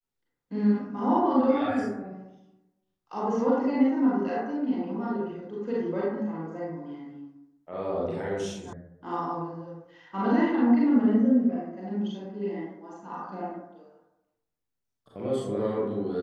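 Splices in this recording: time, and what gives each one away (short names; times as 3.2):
8.73 sound cut off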